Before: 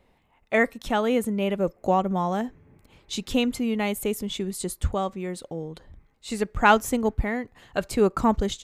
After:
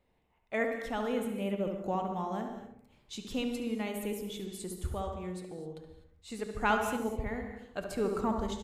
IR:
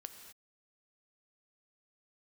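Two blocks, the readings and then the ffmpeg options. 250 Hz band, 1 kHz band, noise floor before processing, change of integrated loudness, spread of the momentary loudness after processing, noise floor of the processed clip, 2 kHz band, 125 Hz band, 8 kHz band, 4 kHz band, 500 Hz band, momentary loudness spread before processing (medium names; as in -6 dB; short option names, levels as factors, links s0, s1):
-9.0 dB, -10.0 dB, -64 dBFS, -9.5 dB, 13 LU, -72 dBFS, -10.0 dB, -9.0 dB, -11.0 dB, -10.5 dB, -9.0 dB, 13 LU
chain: -filter_complex "[0:a]asplit=2[s0][s1];[s1]adelay=71,lowpass=f=1400:p=1,volume=0.596,asplit=2[s2][s3];[s3]adelay=71,lowpass=f=1400:p=1,volume=0.49,asplit=2[s4][s5];[s5]adelay=71,lowpass=f=1400:p=1,volume=0.49,asplit=2[s6][s7];[s7]adelay=71,lowpass=f=1400:p=1,volume=0.49,asplit=2[s8][s9];[s9]adelay=71,lowpass=f=1400:p=1,volume=0.49,asplit=2[s10][s11];[s11]adelay=71,lowpass=f=1400:p=1,volume=0.49[s12];[s0][s2][s4][s6][s8][s10][s12]amix=inputs=7:normalize=0[s13];[1:a]atrim=start_sample=2205[s14];[s13][s14]afir=irnorm=-1:irlink=0,volume=0.501"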